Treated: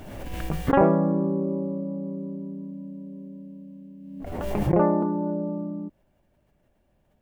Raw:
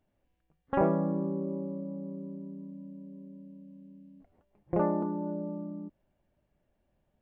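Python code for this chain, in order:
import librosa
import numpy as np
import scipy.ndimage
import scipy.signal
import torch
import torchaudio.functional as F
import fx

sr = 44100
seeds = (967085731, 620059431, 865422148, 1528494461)

y = fx.pre_swell(x, sr, db_per_s=33.0)
y = F.gain(torch.from_numpy(y), 7.0).numpy()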